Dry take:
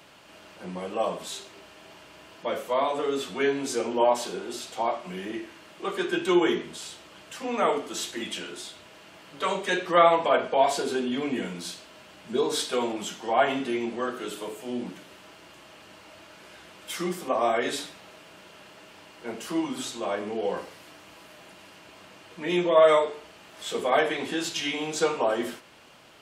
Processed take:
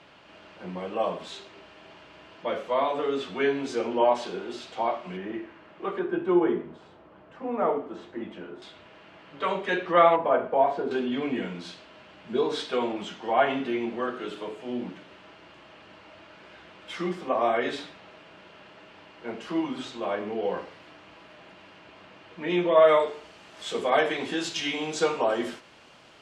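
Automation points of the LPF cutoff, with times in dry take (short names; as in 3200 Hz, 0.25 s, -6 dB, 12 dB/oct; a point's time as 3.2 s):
3800 Hz
from 5.17 s 2000 Hz
from 5.99 s 1100 Hz
from 8.62 s 2800 Hz
from 10.16 s 1300 Hz
from 10.91 s 3400 Hz
from 23 s 6900 Hz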